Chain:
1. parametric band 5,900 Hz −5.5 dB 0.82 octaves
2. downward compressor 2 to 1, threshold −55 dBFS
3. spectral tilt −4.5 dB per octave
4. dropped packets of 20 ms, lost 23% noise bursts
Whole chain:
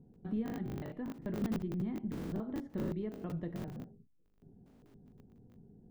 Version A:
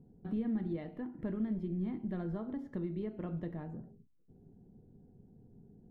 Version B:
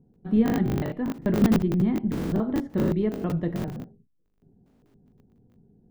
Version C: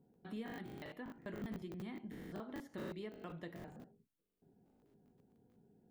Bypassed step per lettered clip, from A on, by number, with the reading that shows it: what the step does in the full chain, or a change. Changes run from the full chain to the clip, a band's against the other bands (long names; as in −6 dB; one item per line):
4, 2 kHz band −2.5 dB
2, average gain reduction 12.5 dB
3, 125 Hz band −8.0 dB